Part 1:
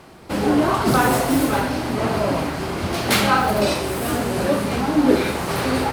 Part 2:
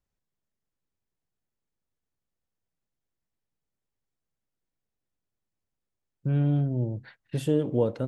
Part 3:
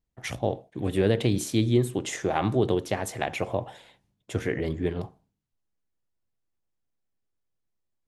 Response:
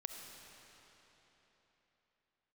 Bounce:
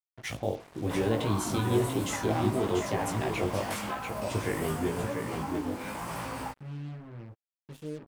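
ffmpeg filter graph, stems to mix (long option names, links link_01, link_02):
-filter_complex "[0:a]equalizer=frequency=400:width_type=o:width=0.33:gain=-11,equalizer=frequency=1000:width_type=o:width=0.33:gain=7,equalizer=frequency=4000:width_type=o:width=0.33:gain=-8,equalizer=frequency=8000:width_type=o:width=0.33:gain=4,acompressor=threshold=-21dB:ratio=12,adelay=600,volume=-8.5dB,asplit=2[link_01][link_02];[link_02]volume=-20dB[link_03];[1:a]adelay=350,volume=-14dB[link_04];[2:a]alimiter=limit=-16dB:level=0:latency=1,volume=-0.5dB,asplit=3[link_05][link_06][link_07];[link_06]volume=-16.5dB[link_08];[link_07]volume=-4.5dB[link_09];[3:a]atrim=start_sample=2205[link_10];[link_03][link_08]amix=inputs=2:normalize=0[link_11];[link_11][link_10]afir=irnorm=-1:irlink=0[link_12];[link_09]aecho=0:1:689:1[link_13];[link_01][link_04][link_05][link_12][link_13]amix=inputs=5:normalize=0,flanger=delay=17.5:depth=2.5:speed=0.96,acrusher=bits=7:mix=0:aa=0.5"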